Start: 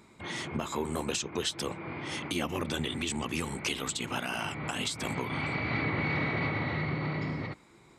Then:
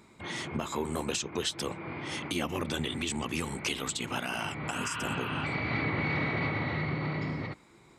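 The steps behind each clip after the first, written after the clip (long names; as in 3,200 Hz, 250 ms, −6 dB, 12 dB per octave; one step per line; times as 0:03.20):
healed spectral selection 0:04.76–0:05.42, 910–4,700 Hz before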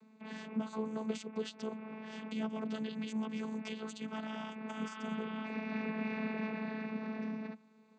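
channel vocoder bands 16, saw 218 Hz
level −5 dB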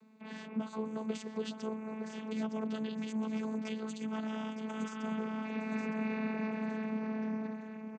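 repeating echo 913 ms, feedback 35%, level −8.5 dB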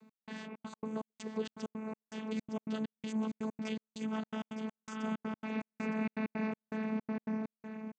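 gate pattern "x..xxx.x.x" 163 BPM −60 dB
level +1 dB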